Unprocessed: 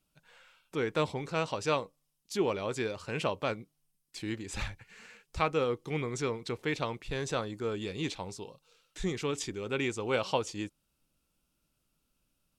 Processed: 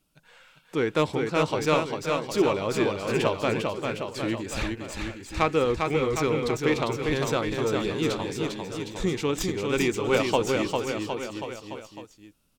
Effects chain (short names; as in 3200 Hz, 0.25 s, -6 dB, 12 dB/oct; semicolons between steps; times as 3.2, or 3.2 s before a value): tracing distortion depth 0.04 ms; bell 310 Hz +3 dB 0.8 oct; bouncing-ball echo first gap 0.4 s, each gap 0.9×, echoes 5; gain +5 dB